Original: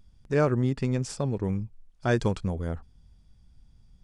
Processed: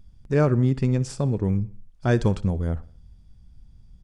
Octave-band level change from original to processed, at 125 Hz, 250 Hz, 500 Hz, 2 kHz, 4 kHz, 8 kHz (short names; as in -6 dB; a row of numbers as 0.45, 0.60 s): +6.0, +4.5, +2.5, +0.5, 0.0, 0.0 dB